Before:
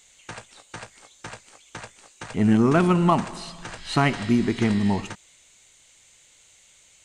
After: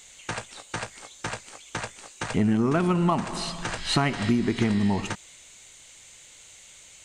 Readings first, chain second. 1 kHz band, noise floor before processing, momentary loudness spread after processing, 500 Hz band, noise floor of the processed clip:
−3.0 dB, −56 dBFS, 24 LU, −3.0 dB, −50 dBFS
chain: downward compressor 4 to 1, threshold −27 dBFS, peak gain reduction 11.5 dB
level +6 dB

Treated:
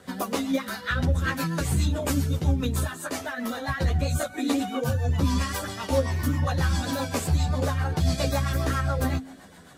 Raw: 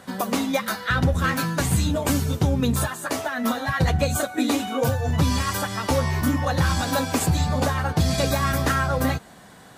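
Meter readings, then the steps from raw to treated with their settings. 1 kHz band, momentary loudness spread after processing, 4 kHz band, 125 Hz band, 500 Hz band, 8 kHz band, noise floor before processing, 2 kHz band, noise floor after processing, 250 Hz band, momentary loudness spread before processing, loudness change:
−6.0 dB, 5 LU, −5.0 dB, −2.0 dB, −4.0 dB, −5.5 dB, −47 dBFS, −5.0 dB, −46 dBFS, −4.0 dB, 4 LU, −3.5 dB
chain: hum removal 52.48 Hz, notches 5
in parallel at −1.5 dB: downward compressor, threshold −28 dBFS, peak gain reduction 12 dB
on the sum: multi-voice chorus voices 4, 0.68 Hz, delay 13 ms, depth 2.1 ms
rotating-speaker cabinet horn 7.5 Hz
level −2 dB

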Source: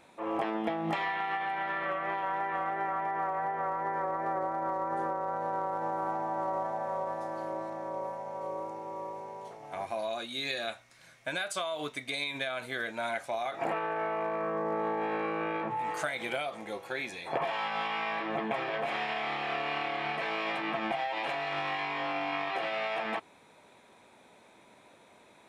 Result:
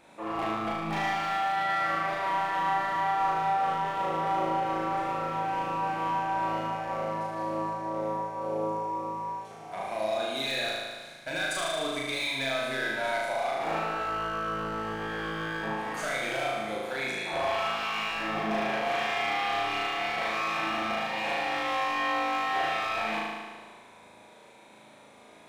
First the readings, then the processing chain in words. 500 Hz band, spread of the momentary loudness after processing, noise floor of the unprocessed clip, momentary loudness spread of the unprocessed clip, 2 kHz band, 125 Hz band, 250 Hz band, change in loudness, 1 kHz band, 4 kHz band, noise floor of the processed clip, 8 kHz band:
+1.5 dB, 6 LU, −59 dBFS, 5 LU, +4.0 dB, +5.5 dB, +2.5 dB, +3.5 dB, +4.0 dB, +5.0 dB, −53 dBFS, +6.5 dB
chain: hard clipping −29.5 dBFS, distortion −14 dB
on a send: flutter between parallel walls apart 6.4 metres, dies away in 1.5 s

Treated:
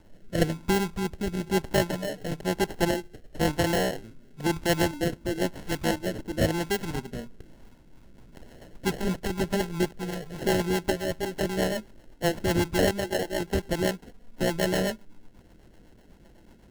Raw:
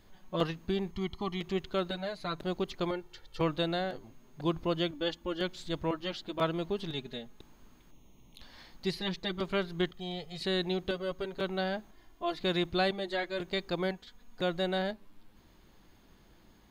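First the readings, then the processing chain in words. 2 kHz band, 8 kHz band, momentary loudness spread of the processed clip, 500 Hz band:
+6.5 dB, +20.5 dB, 7 LU, +5.5 dB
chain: sample-rate reduction 1,200 Hz, jitter 0%
rotating-speaker cabinet horn 1 Hz, later 8 Hz, at 0:07.55
level +8 dB

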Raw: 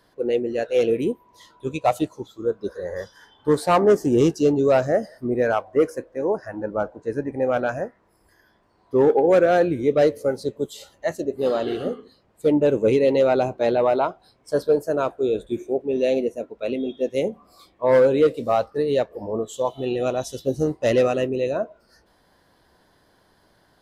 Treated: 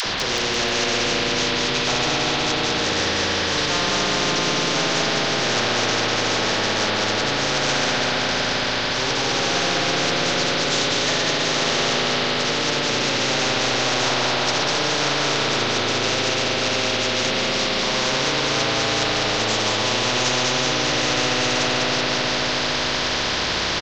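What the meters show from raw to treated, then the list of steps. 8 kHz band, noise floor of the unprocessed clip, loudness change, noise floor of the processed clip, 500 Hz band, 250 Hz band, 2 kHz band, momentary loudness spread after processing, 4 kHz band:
can't be measured, −61 dBFS, +2.5 dB, −23 dBFS, −5.0 dB, −1.5 dB, +14.0 dB, 1 LU, +23.0 dB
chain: variable-slope delta modulation 32 kbit/s
parametric band 3,600 Hz +9 dB 0.77 octaves
reversed playback
downward compressor, threshold −25 dBFS, peak gain reduction 12 dB
reversed playback
hum removal 82.4 Hz, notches 36
upward compression, threshold −31 dBFS
all-pass dispersion lows, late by 56 ms, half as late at 550 Hz
on a send: bouncing-ball delay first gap 200 ms, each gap 0.9×, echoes 5
on the sum: spring reverb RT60 3.9 s, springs 36/56 ms, chirp 35 ms, DRR −6.5 dB
every bin compressed towards the loudest bin 4 to 1
level −1.5 dB

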